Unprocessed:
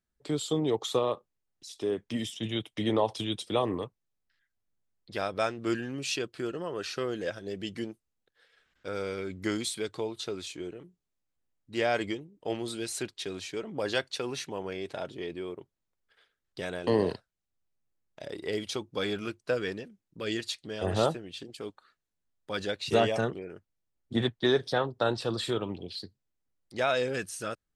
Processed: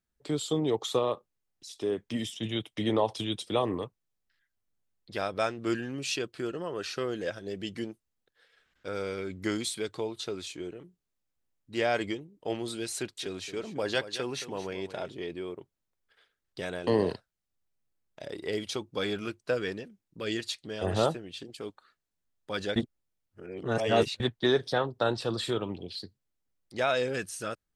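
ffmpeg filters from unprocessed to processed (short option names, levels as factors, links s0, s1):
-filter_complex "[0:a]asettb=1/sr,asplit=3[s0][s1][s2];[s0]atrim=end=12.954[s3];[s1]atrim=start=12.95:end=15.13,asetpts=PTS-STARTPTS,afade=t=in:d=0.004:c=qsin,afade=t=out:st=2.176:d=0.004:c=qsin,aecho=1:1:222:0.237,atrim=end_sample=96138[s4];[s2]atrim=start=15.126[s5];[s3][s4]acrossfade=d=0.004:c1=hsin:c2=qsin[s6];[s6][s5]acrossfade=d=0.004:c1=qsin:c2=hsin,asplit=3[s7][s8][s9];[s7]atrim=end=22.762[s10];[s8]atrim=start=22.758:end=24.202,asetpts=PTS-STARTPTS,areverse[s11];[s9]atrim=start=24.198[s12];[s10][s11]acrossfade=d=0.004:c1=hsin:c2=hsin[s13];[s13][s12]acrossfade=d=0.004:c1=hsin:c2=hsin"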